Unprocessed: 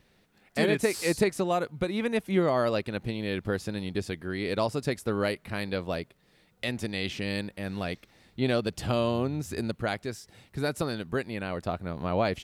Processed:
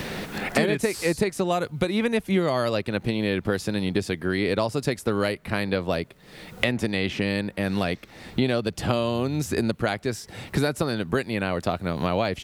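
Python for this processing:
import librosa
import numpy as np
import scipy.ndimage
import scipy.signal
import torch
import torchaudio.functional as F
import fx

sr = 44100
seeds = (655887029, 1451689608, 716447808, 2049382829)

y = fx.band_squash(x, sr, depth_pct=100)
y = y * librosa.db_to_amplitude(3.5)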